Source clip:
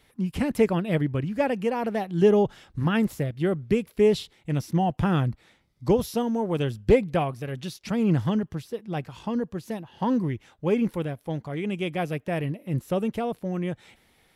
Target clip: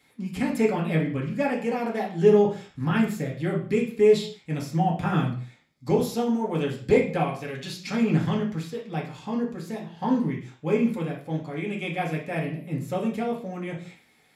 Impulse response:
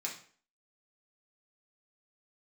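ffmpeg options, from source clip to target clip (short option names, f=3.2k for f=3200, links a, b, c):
-filter_complex "[0:a]asettb=1/sr,asplit=3[a][b][c];[a]atrim=end=7.254[d];[b]atrim=start=7.25:end=8.93,asetpts=PTS-STARTPTS,afade=t=in:d=0.004:c=qsin,afade=t=out:st=1.676:d=0.004:c=qsin,equalizer=f=2.8k:t=o:w=2.6:g=4[e];[c]atrim=start=8.926[f];[d][e]acrossfade=d=0.004:c1=hsin:c2=qsin[g];[g][f]acrossfade=d=0.004:c1=qsin:c2=hsin[h];[1:a]atrim=start_sample=2205,afade=t=out:st=0.3:d=0.01,atrim=end_sample=13671[i];[h][i]afir=irnorm=-1:irlink=0"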